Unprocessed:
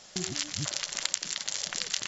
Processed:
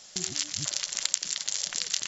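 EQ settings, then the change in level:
high-shelf EQ 3,400 Hz +10 dB
−4.5 dB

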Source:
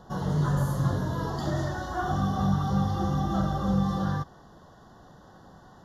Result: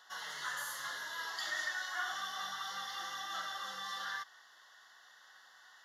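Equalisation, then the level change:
high-pass with resonance 2,100 Hz, resonance Q 3.2
+1.0 dB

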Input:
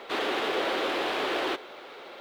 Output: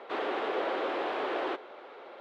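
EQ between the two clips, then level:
resonant band-pass 660 Hz, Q 0.57
−1.5 dB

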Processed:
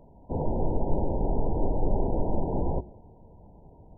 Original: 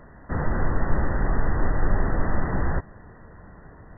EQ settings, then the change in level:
mains-hum notches 60/120/180/240/300/360 Hz
dynamic equaliser 420 Hz, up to +7 dB, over −45 dBFS, Q 0.71
linear-phase brick-wall low-pass 1,000 Hz
−4.5 dB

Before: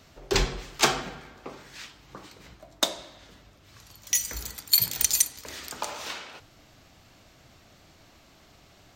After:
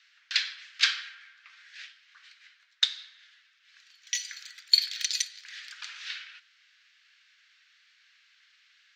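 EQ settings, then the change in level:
elliptic high-pass filter 1,600 Hz, stop band 70 dB
dynamic equaliser 4,200 Hz, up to +7 dB, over −42 dBFS, Q 1.8
high-frequency loss of the air 180 metres
+2.5 dB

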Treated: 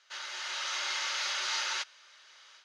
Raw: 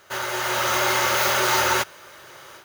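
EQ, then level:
high-pass filter 580 Hz 6 dB per octave
low-pass filter 5,100 Hz 24 dB per octave
first difference
0.0 dB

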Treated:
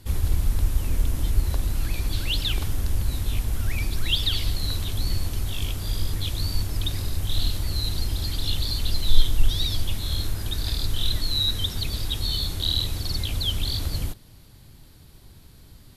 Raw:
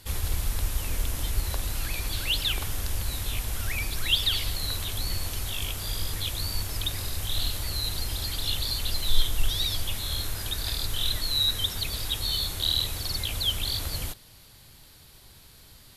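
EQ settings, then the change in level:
drawn EQ curve 310 Hz 0 dB, 480 Hz −6 dB, 2,800 Hz −11 dB
dynamic equaliser 4,300 Hz, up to +5 dB, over −49 dBFS, Q 0.98
+6.5 dB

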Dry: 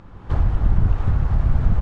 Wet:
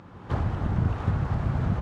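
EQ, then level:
high-pass filter 110 Hz 12 dB per octave
0.0 dB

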